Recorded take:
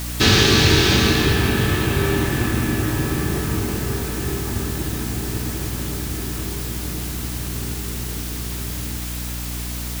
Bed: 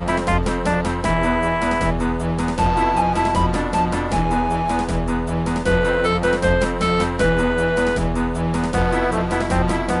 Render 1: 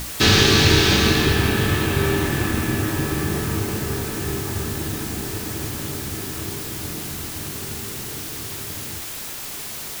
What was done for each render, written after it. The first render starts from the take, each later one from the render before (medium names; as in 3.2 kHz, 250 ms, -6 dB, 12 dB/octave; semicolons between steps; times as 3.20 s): hum notches 60/120/180/240/300/360 Hz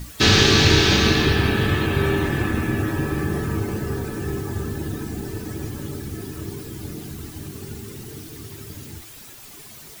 noise reduction 12 dB, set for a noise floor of -32 dBFS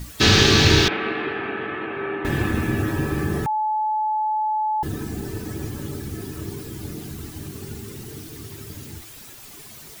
0.88–2.25 s: cabinet simulation 450–2200 Hz, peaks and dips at 550 Hz -5 dB, 970 Hz -5 dB, 1.7 kHz -4 dB; 3.46–4.83 s: bleep 861 Hz -19.5 dBFS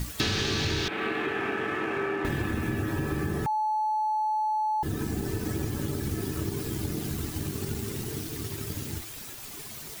waveshaping leveller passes 1; compression 8:1, threshold -26 dBFS, peak gain reduction 17 dB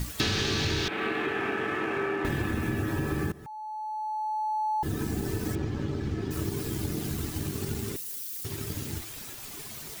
3.32–4.89 s: fade in, from -20 dB; 5.55–6.31 s: distance through air 160 m; 7.96–8.45 s: pre-emphasis filter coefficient 0.97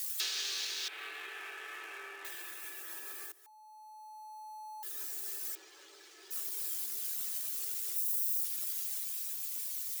steep high-pass 330 Hz 96 dB/octave; differentiator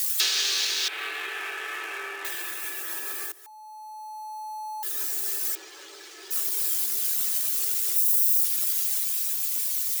trim +11.5 dB